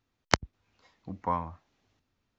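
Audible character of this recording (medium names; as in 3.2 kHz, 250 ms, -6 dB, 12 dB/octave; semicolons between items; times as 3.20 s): noise floor -81 dBFS; spectral tilt -3.5 dB/octave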